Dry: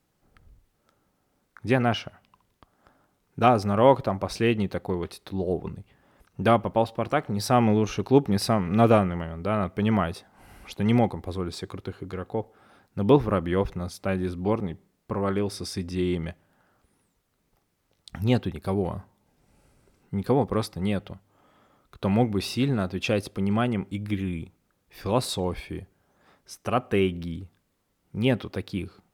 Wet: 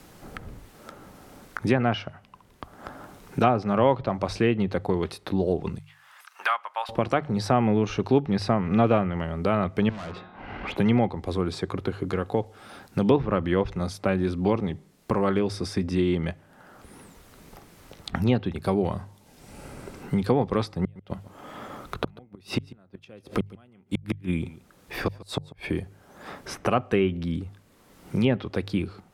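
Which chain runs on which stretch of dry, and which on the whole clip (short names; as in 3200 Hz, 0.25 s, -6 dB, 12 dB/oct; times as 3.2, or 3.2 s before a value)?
5.78–6.89 HPF 1100 Hz 24 dB/oct + high shelf 2700 Hz -6 dB
9.89–10.76 LPF 3300 Hz 24 dB/oct + de-hum 179.4 Hz, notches 23 + tube stage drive 39 dB, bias 0.45
20.81–25.8 flipped gate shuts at -19 dBFS, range -41 dB + echo 0.143 s -20.5 dB
whole clip: treble ducked by the level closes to 3000 Hz, closed at -17 dBFS; notches 50/100/150 Hz; three-band squash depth 70%; gain +2 dB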